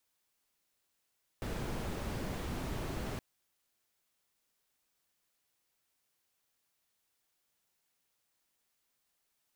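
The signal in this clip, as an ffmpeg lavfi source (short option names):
-f lavfi -i "anoisesrc=c=brown:a=0.0624:d=1.77:r=44100:seed=1"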